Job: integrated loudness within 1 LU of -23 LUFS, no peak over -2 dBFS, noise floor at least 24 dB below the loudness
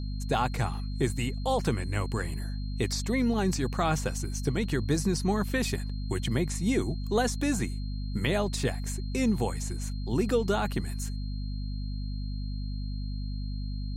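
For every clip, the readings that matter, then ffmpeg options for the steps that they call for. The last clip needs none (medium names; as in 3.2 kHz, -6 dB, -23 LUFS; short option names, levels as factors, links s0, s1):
hum 50 Hz; highest harmonic 250 Hz; hum level -31 dBFS; steady tone 4.2 kHz; tone level -50 dBFS; loudness -30.5 LUFS; peak level -13.0 dBFS; loudness target -23.0 LUFS
-> -af "bandreject=f=50:t=h:w=6,bandreject=f=100:t=h:w=6,bandreject=f=150:t=h:w=6,bandreject=f=200:t=h:w=6,bandreject=f=250:t=h:w=6"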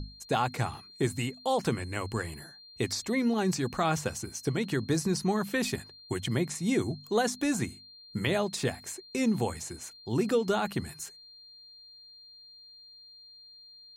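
hum not found; steady tone 4.2 kHz; tone level -50 dBFS
-> -af "bandreject=f=4200:w=30"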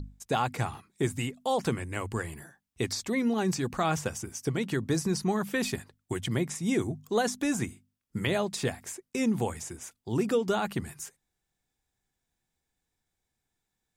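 steady tone not found; loudness -31.0 LUFS; peak level -14.0 dBFS; loudness target -23.0 LUFS
-> -af "volume=2.51"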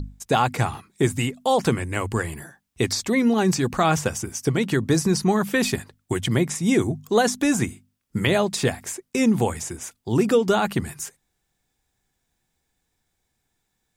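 loudness -23.0 LUFS; peak level -6.0 dBFS; noise floor -76 dBFS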